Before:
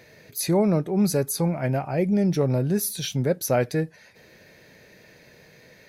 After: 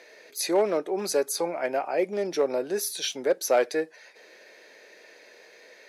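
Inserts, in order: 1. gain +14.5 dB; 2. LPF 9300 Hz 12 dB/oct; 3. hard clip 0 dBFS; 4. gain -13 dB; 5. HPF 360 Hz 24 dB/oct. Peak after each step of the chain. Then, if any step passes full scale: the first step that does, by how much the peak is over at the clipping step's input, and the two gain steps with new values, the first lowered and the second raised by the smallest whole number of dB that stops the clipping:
+3.5, +3.5, 0.0, -13.0, -10.5 dBFS; step 1, 3.5 dB; step 1 +10.5 dB, step 4 -9 dB

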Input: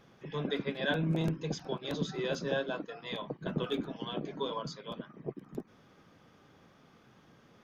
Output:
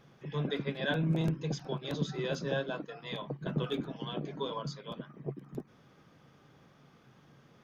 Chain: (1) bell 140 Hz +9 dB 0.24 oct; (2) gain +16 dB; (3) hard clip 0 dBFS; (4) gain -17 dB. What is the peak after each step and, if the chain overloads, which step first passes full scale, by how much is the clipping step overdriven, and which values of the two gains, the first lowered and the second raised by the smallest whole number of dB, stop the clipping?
-18.0, -2.0, -2.0, -19.0 dBFS; no overload

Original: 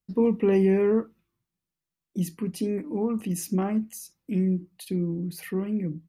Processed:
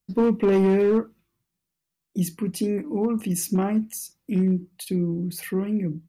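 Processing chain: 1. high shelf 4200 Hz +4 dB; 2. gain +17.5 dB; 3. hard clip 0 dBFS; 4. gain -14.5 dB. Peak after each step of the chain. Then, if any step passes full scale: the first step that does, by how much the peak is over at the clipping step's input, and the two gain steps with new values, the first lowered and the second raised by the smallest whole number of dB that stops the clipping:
-13.0, +4.5, 0.0, -14.5 dBFS; step 2, 4.5 dB; step 2 +12.5 dB, step 4 -9.5 dB

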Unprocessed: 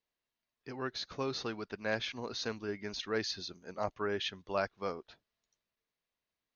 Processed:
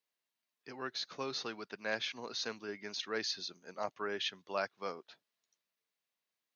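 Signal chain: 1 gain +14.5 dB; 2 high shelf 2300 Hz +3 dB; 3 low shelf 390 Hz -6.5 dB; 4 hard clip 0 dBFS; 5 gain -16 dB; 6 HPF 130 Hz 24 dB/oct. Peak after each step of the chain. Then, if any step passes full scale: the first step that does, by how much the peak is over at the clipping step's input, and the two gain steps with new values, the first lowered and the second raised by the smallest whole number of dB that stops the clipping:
-4.5, -4.0, -4.5, -4.5, -20.5, -20.0 dBFS; no overload

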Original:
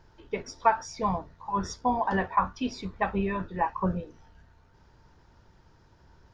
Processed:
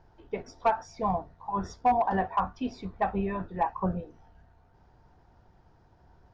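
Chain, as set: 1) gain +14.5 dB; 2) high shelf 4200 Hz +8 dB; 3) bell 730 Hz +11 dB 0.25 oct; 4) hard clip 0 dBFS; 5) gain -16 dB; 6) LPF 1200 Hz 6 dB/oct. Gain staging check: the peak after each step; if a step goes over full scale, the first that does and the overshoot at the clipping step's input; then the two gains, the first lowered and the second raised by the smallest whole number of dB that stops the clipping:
+5.5, +6.0, +10.0, 0.0, -16.0, -16.0 dBFS; step 1, 10.0 dB; step 1 +4.5 dB, step 5 -6 dB

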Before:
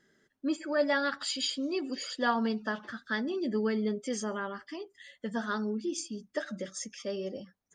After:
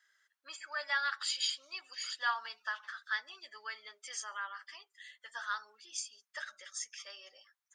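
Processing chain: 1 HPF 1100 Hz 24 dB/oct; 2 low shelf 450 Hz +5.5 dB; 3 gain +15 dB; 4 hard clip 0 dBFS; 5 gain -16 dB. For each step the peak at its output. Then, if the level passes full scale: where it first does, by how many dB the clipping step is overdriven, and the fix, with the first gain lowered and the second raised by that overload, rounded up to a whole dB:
-19.0, -19.0, -4.0, -4.0, -20.0 dBFS; no overload

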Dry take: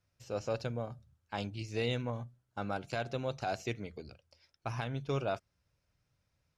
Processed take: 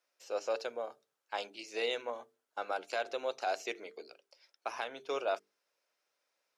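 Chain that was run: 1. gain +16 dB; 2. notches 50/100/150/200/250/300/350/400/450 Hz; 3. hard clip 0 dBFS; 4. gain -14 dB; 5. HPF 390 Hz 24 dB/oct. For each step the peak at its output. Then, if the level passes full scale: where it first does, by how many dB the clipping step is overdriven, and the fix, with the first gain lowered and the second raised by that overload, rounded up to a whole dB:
-4.5, -5.0, -5.0, -19.0, -21.5 dBFS; no overload

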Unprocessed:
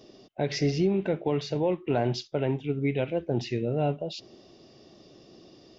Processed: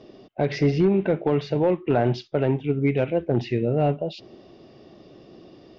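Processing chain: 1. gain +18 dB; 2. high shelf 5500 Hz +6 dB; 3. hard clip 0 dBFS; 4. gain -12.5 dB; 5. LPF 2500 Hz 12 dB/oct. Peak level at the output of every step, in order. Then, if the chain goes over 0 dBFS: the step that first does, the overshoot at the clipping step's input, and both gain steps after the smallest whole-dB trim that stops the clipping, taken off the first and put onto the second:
+4.0, +4.0, 0.0, -12.5, -12.0 dBFS; step 1, 4.0 dB; step 1 +14 dB, step 4 -8.5 dB

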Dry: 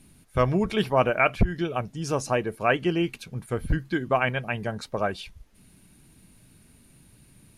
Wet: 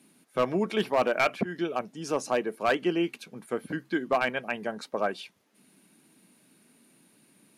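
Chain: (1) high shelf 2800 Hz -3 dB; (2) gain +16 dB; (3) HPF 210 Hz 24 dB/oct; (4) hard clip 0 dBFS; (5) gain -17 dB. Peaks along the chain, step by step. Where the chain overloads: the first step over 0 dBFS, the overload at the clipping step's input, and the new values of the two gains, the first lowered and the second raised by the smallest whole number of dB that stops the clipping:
-8.5, +7.5, +8.0, 0.0, -17.0 dBFS; step 2, 8.0 dB; step 2 +8 dB, step 5 -9 dB

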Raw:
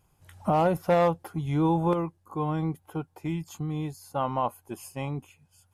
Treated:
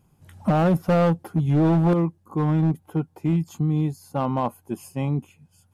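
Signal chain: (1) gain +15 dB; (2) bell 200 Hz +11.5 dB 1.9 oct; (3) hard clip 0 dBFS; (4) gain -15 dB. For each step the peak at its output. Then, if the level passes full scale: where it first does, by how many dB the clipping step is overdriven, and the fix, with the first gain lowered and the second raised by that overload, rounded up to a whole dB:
+0.5, +8.5, 0.0, -15.0 dBFS; step 1, 8.5 dB; step 1 +6 dB, step 4 -6 dB

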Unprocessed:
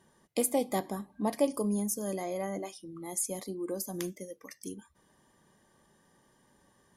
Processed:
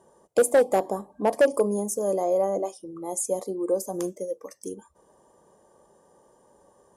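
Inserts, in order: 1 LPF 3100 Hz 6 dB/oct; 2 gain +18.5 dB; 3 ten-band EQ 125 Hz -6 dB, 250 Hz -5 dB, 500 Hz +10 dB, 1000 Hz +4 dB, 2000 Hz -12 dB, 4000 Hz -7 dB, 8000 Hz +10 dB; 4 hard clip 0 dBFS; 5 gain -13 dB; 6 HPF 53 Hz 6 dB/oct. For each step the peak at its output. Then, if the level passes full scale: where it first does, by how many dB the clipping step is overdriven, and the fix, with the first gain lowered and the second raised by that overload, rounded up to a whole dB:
-15.5, +3.0, +9.0, 0.0, -13.0, -12.0 dBFS; step 2, 9.0 dB; step 2 +9.5 dB, step 5 -4 dB

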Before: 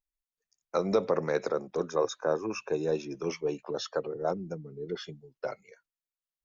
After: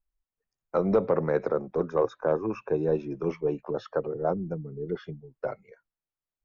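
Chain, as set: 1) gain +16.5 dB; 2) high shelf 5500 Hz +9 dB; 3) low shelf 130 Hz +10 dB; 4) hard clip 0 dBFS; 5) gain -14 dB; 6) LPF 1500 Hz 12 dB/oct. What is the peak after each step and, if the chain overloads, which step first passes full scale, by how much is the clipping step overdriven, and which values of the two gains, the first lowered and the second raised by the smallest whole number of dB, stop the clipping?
+2.5, +2.5, +4.0, 0.0, -14.0, -13.5 dBFS; step 1, 4.0 dB; step 1 +12.5 dB, step 5 -10 dB

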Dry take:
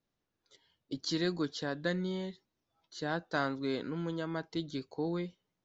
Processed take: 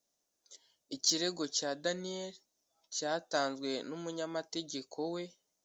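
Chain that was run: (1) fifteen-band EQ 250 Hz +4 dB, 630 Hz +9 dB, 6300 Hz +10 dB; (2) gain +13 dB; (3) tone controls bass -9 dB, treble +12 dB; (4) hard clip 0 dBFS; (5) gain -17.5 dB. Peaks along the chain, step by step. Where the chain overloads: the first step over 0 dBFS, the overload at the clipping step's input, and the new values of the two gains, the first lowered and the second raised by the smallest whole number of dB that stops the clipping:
-14.5, -1.5, +3.0, 0.0, -17.5 dBFS; step 3, 3.0 dB; step 2 +10 dB, step 5 -14.5 dB

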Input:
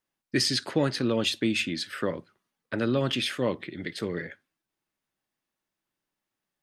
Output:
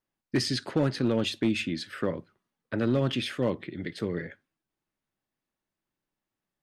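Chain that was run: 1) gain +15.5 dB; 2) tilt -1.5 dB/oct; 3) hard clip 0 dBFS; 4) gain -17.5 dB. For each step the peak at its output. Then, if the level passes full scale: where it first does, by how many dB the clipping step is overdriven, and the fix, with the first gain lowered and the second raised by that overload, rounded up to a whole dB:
+3.0, +4.5, 0.0, -17.5 dBFS; step 1, 4.5 dB; step 1 +10.5 dB, step 4 -12.5 dB

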